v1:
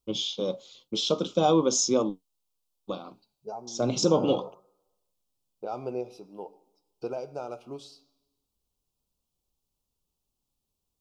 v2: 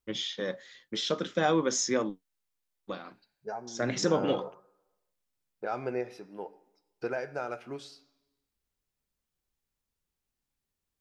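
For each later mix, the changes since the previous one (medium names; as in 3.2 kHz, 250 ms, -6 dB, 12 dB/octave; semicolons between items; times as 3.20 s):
first voice -4.5 dB; master: remove Butterworth band-stop 1.8 kHz, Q 1.1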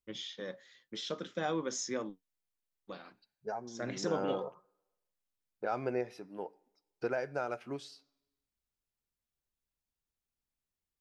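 first voice -8.5 dB; second voice: send -9.0 dB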